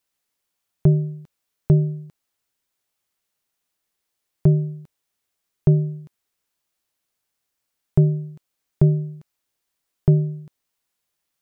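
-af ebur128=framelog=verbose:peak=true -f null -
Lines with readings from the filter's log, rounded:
Integrated loudness:
  I:         -21.2 LUFS
  Threshold: -32.7 LUFS
Loudness range:
  LRA:         4.8 LU
  Threshold: -45.8 LUFS
  LRA low:   -28.4 LUFS
  LRA high:  -23.6 LUFS
True peak:
  Peak:       -5.0 dBFS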